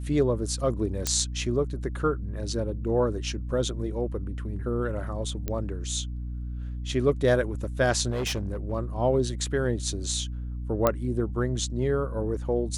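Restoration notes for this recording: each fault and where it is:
hum 60 Hz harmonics 5 -33 dBFS
1.07 pop -9 dBFS
5.48 pop -16 dBFS
8.11–8.73 clipped -25 dBFS
10.87 pop -8 dBFS

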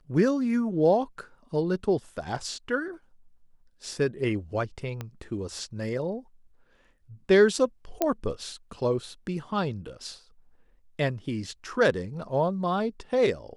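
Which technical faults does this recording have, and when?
5.01 pop -20 dBFS
8.02 pop -10 dBFS

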